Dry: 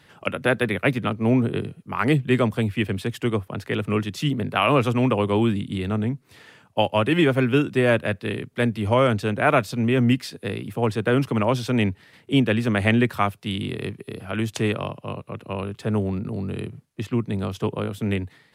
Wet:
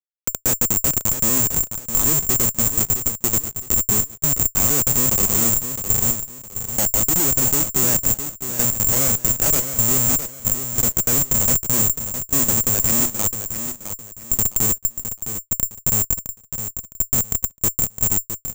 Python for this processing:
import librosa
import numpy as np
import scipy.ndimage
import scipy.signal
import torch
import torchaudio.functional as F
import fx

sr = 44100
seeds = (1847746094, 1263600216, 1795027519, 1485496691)

p1 = fx.halfwave_hold(x, sr)
p2 = fx.highpass(p1, sr, hz=140.0, slope=6)
p3 = fx.notch(p2, sr, hz=740.0, q=12.0)
p4 = fx.schmitt(p3, sr, flips_db=-15.0)
p5 = p4 + fx.echo_feedback(p4, sr, ms=661, feedback_pct=29, wet_db=-9.0, dry=0)
p6 = (np.kron(p5[::6], np.eye(6)[0]) * 6)[:len(p5)]
y = F.gain(torch.from_numpy(p6), -4.5).numpy()